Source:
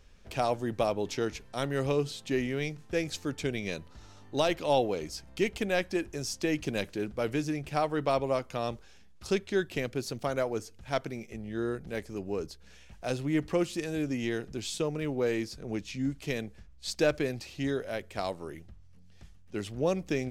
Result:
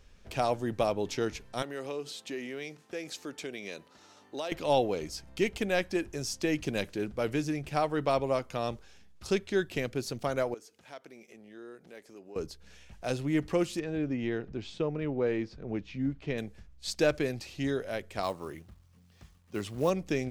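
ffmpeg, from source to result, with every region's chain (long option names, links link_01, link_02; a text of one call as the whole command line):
ffmpeg -i in.wav -filter_complex "[0:a]asettb=1/sr,asplit=3[link_01][link_02][link_03];[link_01]atrim=end=1.624[link_04];[link_02]atrim=start=1.62:end=4.52,asetpts=PTS-STARTPTS,afade=type=in:duration=0.004:curve=qsin,afade=type=out:start_time=2.896:duration=0.004:curve=qsin,highpass=280,acompressor=threshold=-38dB:ratio=2:attack=3.2:release=140:knee=1:detection=peak[link_05];[link_03]atrim=start=4.516[link_06];[link_04][link_05]acrossfade=duration=0.004:curve1=hsin:curve2=qsin[link_07];[link_07][link_06]acrossfade=duration=0.004:curve1=qsin:curve2=hsin,asettb=1/sr,asplit=3[link_08][link_09][link_10];[link_08]atrim=end=10.544[link_11];[link_09]atrim=start=10.54:end=12.36,asetpts=PTS-STARTPTS,afade=type=in:duration=0.004:curve=qsin,afade=type=out:start_time=1.816:duration=0.004:curve=qsin,highpass=290,acompressor=threshold=-54dB:ratio=2:attack=3.2:release=140:knee=1:detection=peak[link_12];[link_10]atrim=start=12.356[link_13];[link_11][link_12]acrossfade=duration=0.004:curve1=hsin:curve2=qsin[link_14];[link_14][link_13]acrossfade=duration=0.004:curve1=qsin:curve2=hsin,asettb=1/sr,asplit=3[link_15][link_16][link_17];[link_15]atrim=end=13.794[link_18];[link_16]atrim=start=13.79:end=16.38,asetpts=PTS-STARTPTS,afade=type=in:duration=0.004:curve=qsin,afade=type=out:start_time=2.586:duration=0.004:curve=qsin,lowpass=3900,highshelf=frequency=2900:gain=-8.5[link_19];[link_17]atrim=start=16.376[link_20];[link_18][link_19]acrossfade=duration=0.004:curve1=hsin:curve2=qsin[link_21];[link_21][link_20]acrossfade=duration=0.004:curve1=qsin:curve2=hsin,asettb=1/sr,asplit=3[link_22][link_23][link_24];[link_22]atrim=end=18.234[link_25];[link_23]atrim=start=18.23:end=19.9,asetpts=PTS-STARTPTS,afade=type=in:duration=0.004:curve=qsin,afade=type=out:start_time=1.666:duration=0.004:curve=qsin,equalizer=frequency=1100:width_type=o:width=0.3:gain=8,acrusher=bits=6:mode=log:mix=0:aa=0.000001,highpass=53[link_26];[link_24]atrim=start=19.896[link_27];[link_25][link_26]acrossfade=duration=0.004:curve1=hsin:curve2=qsin[link_28];[link_28][link_27]acrossfade=duration=0.004:curve1=qsin:curve2=hsin" out.wav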